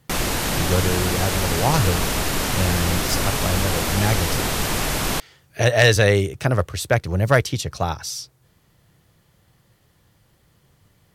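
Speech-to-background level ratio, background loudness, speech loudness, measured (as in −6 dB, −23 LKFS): 0.5 dB, −22.5 LKFS, −22.0 LKFS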